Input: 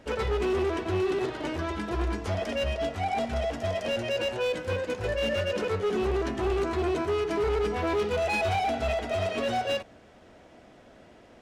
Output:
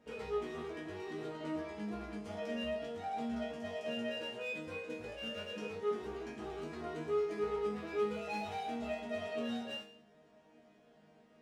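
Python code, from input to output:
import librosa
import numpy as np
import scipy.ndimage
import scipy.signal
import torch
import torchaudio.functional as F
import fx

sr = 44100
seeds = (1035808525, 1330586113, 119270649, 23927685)

y = fx.highpass(x, sr, hz=210.0, slope=6)
y = fx.low_shelf(y, sr, hz=350.0, db=10.5)
y = fx.resonator_bank(y, sr, root=51, chord='sus4', decay_s=0.53)
y = y * librosa.db_to_amplitude(5.0)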